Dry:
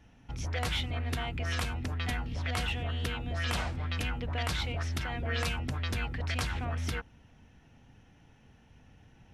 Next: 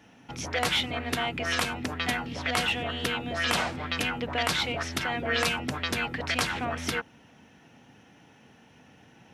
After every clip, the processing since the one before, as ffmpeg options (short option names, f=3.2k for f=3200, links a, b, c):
-af "highpass=200,volume=8dB"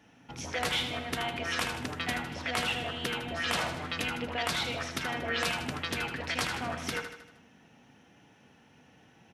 -filter_complex "[0:a]flanger=delay=4.4:depth=9.6:regen=-87:speed=2:shape=sinusoidal,asplit=2[a][b];[b]aecho=0:1:78|156|234|312|390|468:0.398|0.211|0.112|0.0593|0.0314|0.0166[c];[a][c]amix=inputs=2:normalize=0"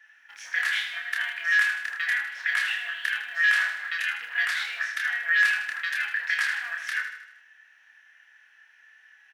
-filter_complex "[0:a]acrusher=bits=7:mode=log:mix=0:aa=0.000001,highpass=f=1.7k:t=q:w=11,asplit=2[a][b];[b]adelay=28,volume=-3dB[c];[a][c]amix=inputs=2:normalize=0,volume=-5dB"